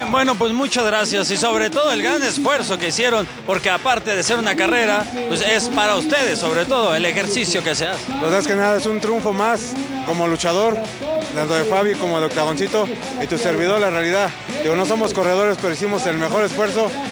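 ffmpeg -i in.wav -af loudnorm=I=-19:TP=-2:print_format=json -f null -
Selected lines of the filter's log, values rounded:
"input_i" : "-18.4",
"input_tp" : "-1.8",
"input_lra" : "1.8",
"input_thresh" : "-28.4",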